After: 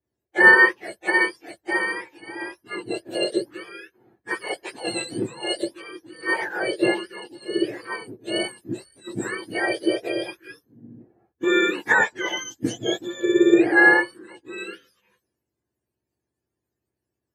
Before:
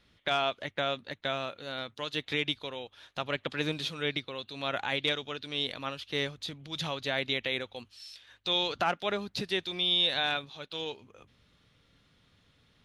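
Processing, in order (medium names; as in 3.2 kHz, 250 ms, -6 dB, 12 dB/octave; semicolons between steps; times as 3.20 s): spectrum inverted on a logarithmic axis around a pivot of 1.3 kHz; peaking EQ 2.3 kHz +14.5 dB 0.32 oct; speed mistake 45 rpm record played at 33 rpm; three bands expanded up and down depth 70%; trim +6 dB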